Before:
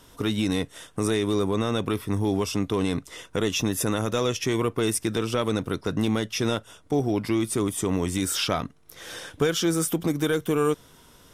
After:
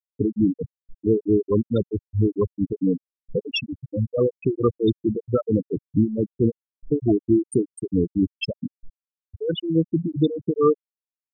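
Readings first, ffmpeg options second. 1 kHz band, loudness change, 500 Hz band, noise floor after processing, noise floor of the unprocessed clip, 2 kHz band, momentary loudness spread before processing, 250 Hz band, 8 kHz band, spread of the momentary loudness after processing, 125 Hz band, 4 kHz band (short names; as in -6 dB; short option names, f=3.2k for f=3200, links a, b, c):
-5.0 dB, +2.0 dB, +3.0 dB, under -85 dBFS, -54 dBFS, -7.5 dB, 6 LU, +3.5 dB, under -15 dB, 9 LU, +2.5 dB, -5.5 dB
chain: -af "aeval=exprs='val(0)+0.5*0.0355*sgn(val(0))':c=same,tremolo=f=4.5:d=0.74,afftfilt=real='re*gte(hypot(re,im),0.251)':imag='im*gte(hypot(re,im),0.251)':win_size=1024:overlap=0.75,volume=6.5dB"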